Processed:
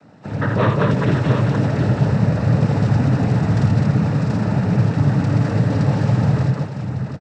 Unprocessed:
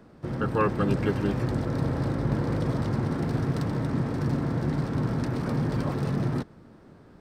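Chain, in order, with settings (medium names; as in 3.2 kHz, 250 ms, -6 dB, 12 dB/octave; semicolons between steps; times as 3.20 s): bass shelf 150 Hz +5 dB; comb 1.5 ms, depth 57%; noise-vocoded speech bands 12; on a send: multi-tap echo 55/83/205/212/654/731 ms -7.5/-6/-5.5/-7/-12.5/-6.5 dB; on the sum: trim +4 dB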